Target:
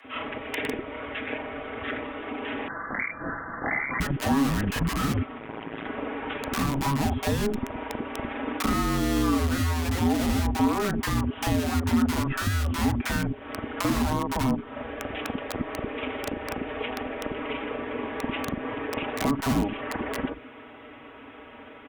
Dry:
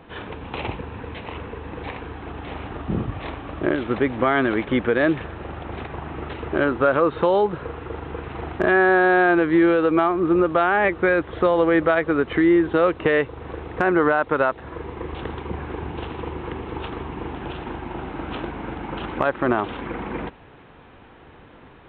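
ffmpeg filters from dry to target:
-filter_complex "[0:a]acrossover=split=210|1400[a][b][c];[a]acompressor=threshold=-38dB:ratio=4[d];[b]acompressor=threshold=-19dB:ratio=4[e];[c]acompressor=threshold=-29dB:ratio=4[f];[d][e][f]amix=inputs=3:normalize=0,acrossover=split=670[g][h];[g]acrusher=bits=3:mix=0:aa=0.000001[i];[h]aecho=1:1:5.8:0.92[j];[i][j]amix=inputs=2:normalize=0,acrossover=split=460|1400[k][l][m];[l]adelay=40[n];[k]adelay=90[o];[o][n][m]amix=inputs=3:normalize=0,asettb=1/sr,asplit=3[p][q][r];[p]atrim=end=2.684[s];[q]atrim=start=2.68:end=4,asetpts=PTS-STARTPTS,afade=t=in:d=0.004:c=qsin,afade=t=out:st=1.316:d=0.004:c=qsin,lowpass=f=2.4k:t=q:w=0.5098,lowpass=f=2.4k:t=q:w=0.6013,lowpass=f=2.4k:t=q:w=0.9,lowpass=f=2.4k:t=q:w=2.563,afreqshift=-2800[t];[r]atrim=start=3.996[u];[s][t]acrossfade=d=0.004:c1=hsin:c2=qsin[v];[v][u]acrossfade=d=0.004:c1=qsin:c2=hsin,acompressor=threshold=-35dB:ratio=2.5,afreqshift=-420,equalizer=f=250:w=2.2:g=10,asplit=3[w][x][y];[w]afade=t=out:st=5.38:d=0.02[z];[x]tremolo=f=110:d=1,afade=t=in:st=5.38:d=0.02,afade=t=out:st=5.85:d=0.02[aa];[y]afade=t=in:st=5.85:d=0.02[ab];[z][aa][ab]amix=inputs=3:normalize=0,volume=5.5dB" -ar 48000 -c:a libopus -b:a 256k

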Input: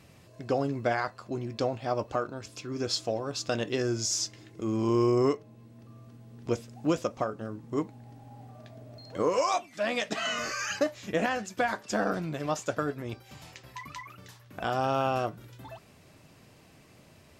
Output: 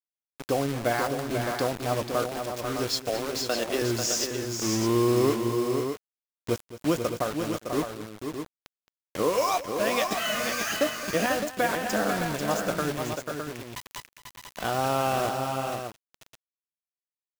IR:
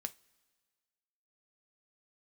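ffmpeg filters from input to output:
-filter_complex "[0:a]asettb=1/sr,asplit=3[a][b][c];[a]atrim=end=3.094[d];[b]atrim=start=3.09:end=3.82,asetpts=PTS-STARTPTS,afade=t=in:d=0.004:c=qsin,afade=t=out:st=0.726:d=0.004:c=qsin,highpass=f=250:w=0.5412,highpass=f=250:w=1.3066[e];[c]atrim=start=3.816[f];[d][e]acrossfade=d=0.004:c1=hsin:c2=qsin[g];[g][f]acrossfade=d=0.004:c1=qsin:c2=hsin,acrusher=bits=5:mix=0:aa=0.000001,asplit=2[h][i];[i]aecho=0:1:219|491|611:0.168|0.473|0.422[j];[h][j]amix=inputs=2:normalize=0,volume=1.5dB"

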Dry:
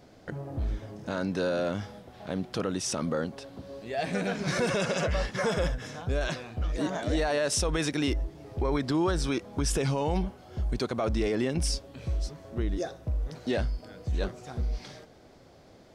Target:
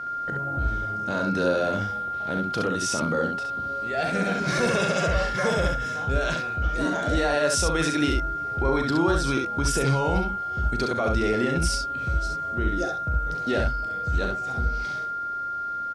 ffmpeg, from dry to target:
-filter_complex "[0:a]aeval=exprs='val(0)+0.0224*sin(2*PI*1400*n/s)':c=same,asplit=2[a][b];[b]aecho=0:1:37|67:0.316|0.631[c];[a][c]amix=inputs=2:normalize=0,volume=2dB"

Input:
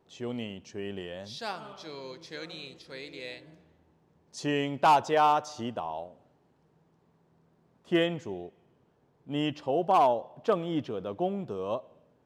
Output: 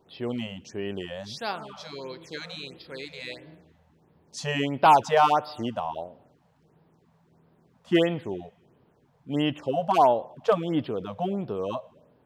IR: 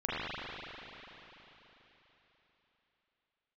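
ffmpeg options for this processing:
-af "afftfilt=real='re*(1-between(b*sr/1024,290*pow(7800/290,0.5+0.5*sin(2*PI*1.5*pts/sr))/1.41,290*pow(7800/290,0.5+0.5*sin(2*PI*1.5*pts/sr))*1.41))':imag='im*(1-between(b*sr/1024,290*pow(7800/290,0.5+0.5*sin(2*PI*1.5*pts/sr))/1.41,290*pow(7800/290,0.5+0.5*sin(2*PI*1.5*pts/sr))*1.41))':win_size=1024:overlap=0.75,volume=4.5dB"

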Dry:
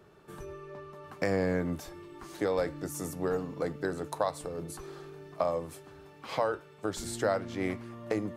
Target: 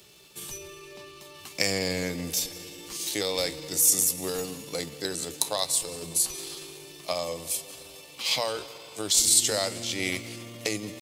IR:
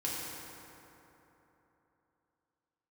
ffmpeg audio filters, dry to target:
-filter_complex "[0:a]asplit=2[a][b];[1:a]atrim=start_sample=2205,adelay=128[c];[b][c]afir=irnorm=-1:irlink=0,volume=-19dB[d];[a][d]amix=inputs=2:normalize=0,aexciter=amount=7.8:drive=7.5:freq=2.3k,atempo=0.76,volume=-2dB"

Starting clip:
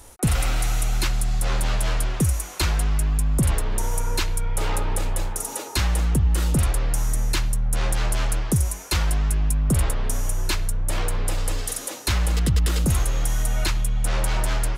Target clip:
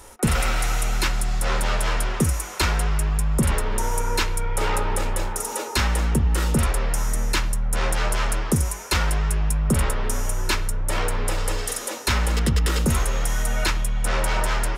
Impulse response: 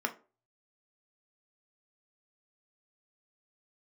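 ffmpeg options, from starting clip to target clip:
-filter_complex "[0:a]asplit=2[a][b];[1:a]atrim=start_sample=2205,lowpass=8.7k[c];[b][c]afir=irnorm=-1:irlink=0,volume=-7dB[d];[a][d]amix=inputs=2:normalize=0"

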